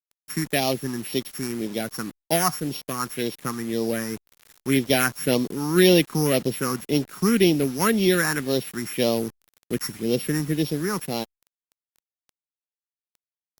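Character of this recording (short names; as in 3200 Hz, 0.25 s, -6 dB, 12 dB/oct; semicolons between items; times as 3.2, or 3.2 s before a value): a buzz of ramps at a fixed pitch in blocks of 8 samples; phasing stages 4, 1.9 Hz, lowest notch 550–1500 Hz; a quantiser's noise floor 8-bit, dither none; Opus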